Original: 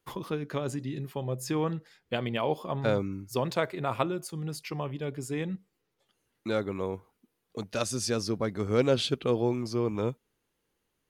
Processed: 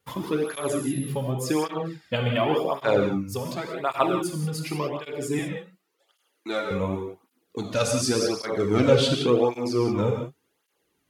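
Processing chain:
0:00.45–0:01.07: steady tone 11,000 Hz −48 dBFS
0:03.21–0:03.83: downward compressor 2.5 to 1, threshold −37 dBFS, peak gain reduction 10 dB
0:05.39–0:06.71: high-pass filter 420 Hz 12 dB per octave
reverb whose tail is shaped and stops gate 210 ms flat, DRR 1.5 dB
through-zero flanger with one copy inverted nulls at 0.89 Hz, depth 3.2 ms
level +7 dB

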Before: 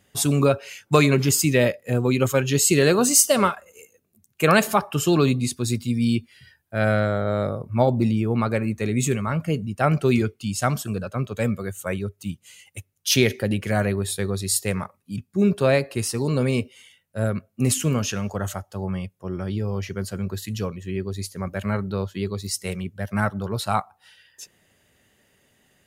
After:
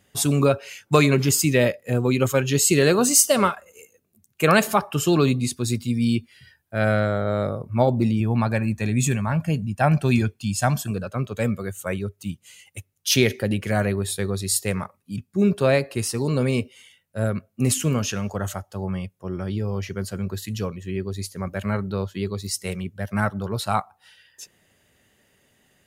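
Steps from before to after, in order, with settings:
0:08.20–0:10.91: comb filter 1.2 ms, depth 53%

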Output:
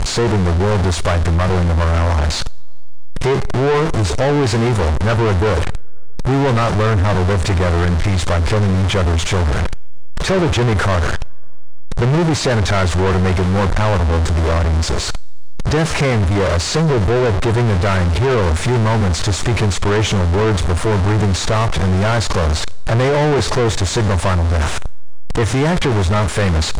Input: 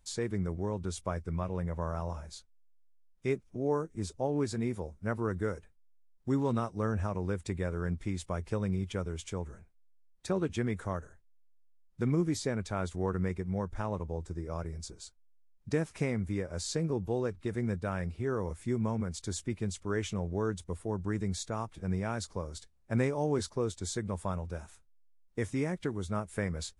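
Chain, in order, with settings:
converter with a step at zero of −35.5 dBFS
graphic EQ with 15 bands 250 Hz −12 dB, 2,500 Hz −3 dB, 10,000 Hz +8 dB
coupled-rooms reverb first 0.68 s, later 3.1 s, from −19 dB, DRR 17 dB
leveller curve on the samples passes 5
high-frequency loss of the air 120 metres
level +9 dB

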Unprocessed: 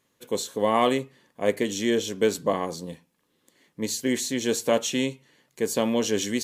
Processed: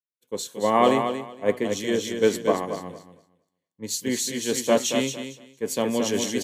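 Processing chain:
on a send: repeating echo 230 ms, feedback 39%, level −4.5 dB
on the sum: multiband upward and downward expander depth 100%
level −1 dB

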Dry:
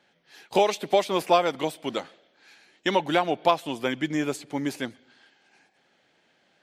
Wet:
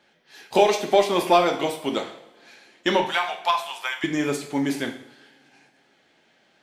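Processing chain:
0:03.05–0:04.04: high-pass filter 850 Hz 24 dB per octave
in parallel at −10.5 dB: asymmetric clip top −19 dBFS
on the sum: coupled-rooms reverb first 0.57 s, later 2.8 s, from −25 dB, DRR 3 dB

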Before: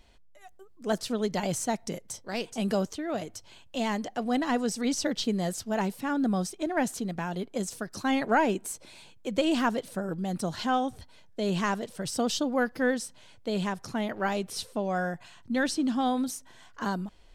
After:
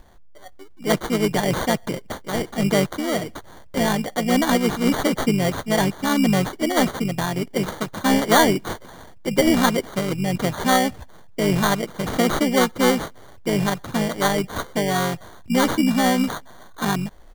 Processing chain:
pitch-shifted copies added −5 semitones −6 dB
decimation without filtering 17×
level +7.5 dB

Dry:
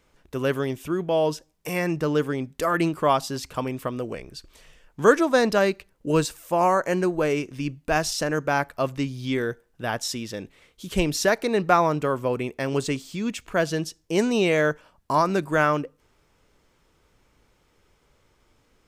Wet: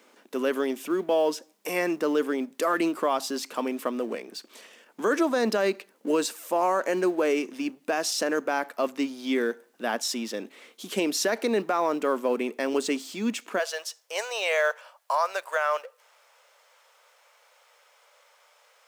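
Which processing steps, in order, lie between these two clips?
mu-law and A-law mismatch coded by mu
elliptic high-pass filter 220 Hz, stop band 50 dB, from 0:13.58 540 Hz
brickwall limiter −15 dBFS, peak gain reduction 11 dB

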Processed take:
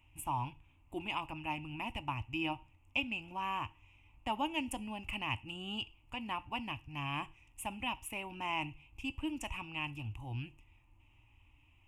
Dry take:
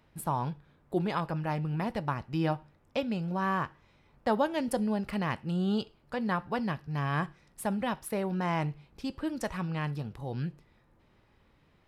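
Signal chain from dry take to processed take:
drawn EQ curve 110 Hz 0 dB, 170 Hz −25 dB, 300 Hz −6 dB, 450 Hz −27 dB, 930 Hz −5 dB, 1,600 Hz −23 dB, 2,700 Hz +9 dB, 4,200 Hz −26 dB, 6,900 Hz −4 dB, 12,000 Hz −8 dB
level +3.5 dB

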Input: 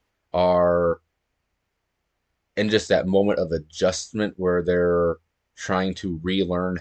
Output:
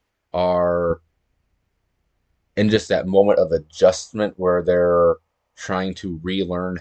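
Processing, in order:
0:00.90–0:02.76: low-shelf EQ 280 Hz +10.5 dB
0:03.17–0:05.66: gain on a spectral selection 460–1,300 Hz +8 dB

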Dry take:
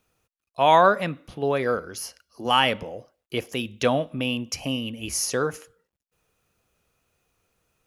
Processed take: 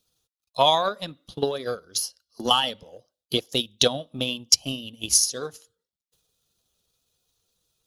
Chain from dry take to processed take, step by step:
spectral magnitudes quantised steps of 15 dB
high shelf with overshoot 2,900 Hz +8 dB, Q 3
transient designer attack +12 dB, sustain −7 dB
level −7 dB

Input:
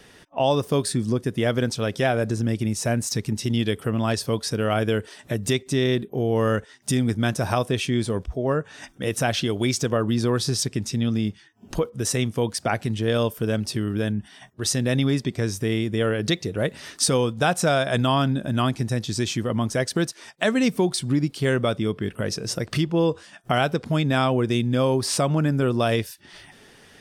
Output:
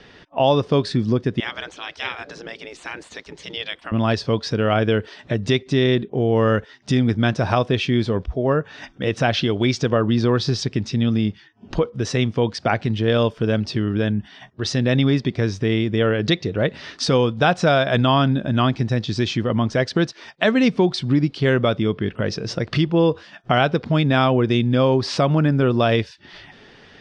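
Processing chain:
low-pass filter 4,800 Hz 24 dB per octave
0:01.40–0:03.92: gate on every frequency bin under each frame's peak −15 dB weak
level +4 dB

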